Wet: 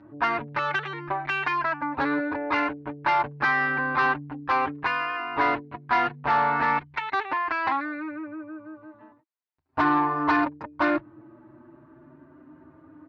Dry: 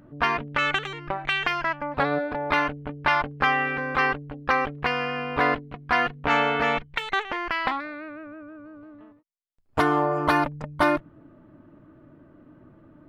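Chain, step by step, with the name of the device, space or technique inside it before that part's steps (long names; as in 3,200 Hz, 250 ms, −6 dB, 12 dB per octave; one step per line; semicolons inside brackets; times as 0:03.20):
barber-pole flanger into a guitar amplifier (barber-pole flanger 6.8 ms +0.37 Hz; soft clipping −22 dBFS, distortion −12 dB; loudspeaker in its box 90–4,400 Hz, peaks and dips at 190 Hz −10 dB, 320 Hz +6 dB, 490 Hz −6 dB, 950 Hz +8 dB, 1,600 Hz +3 dB, 3,200 Hz −7 dB)
level +3 dB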